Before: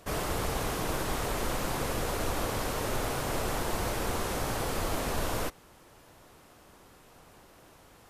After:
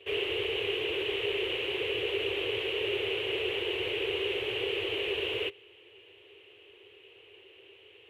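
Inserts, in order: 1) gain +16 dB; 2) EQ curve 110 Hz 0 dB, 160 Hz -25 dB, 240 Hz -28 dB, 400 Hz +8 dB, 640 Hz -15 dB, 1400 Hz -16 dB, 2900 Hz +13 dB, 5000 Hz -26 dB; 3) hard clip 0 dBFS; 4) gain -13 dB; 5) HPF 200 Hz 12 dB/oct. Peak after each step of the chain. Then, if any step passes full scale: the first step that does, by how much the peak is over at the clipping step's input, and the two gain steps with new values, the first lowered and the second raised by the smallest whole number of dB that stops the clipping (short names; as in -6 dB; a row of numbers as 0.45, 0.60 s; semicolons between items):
-1.0, -3.5, -3.5, -16.5, -19.0 dBFS; no overload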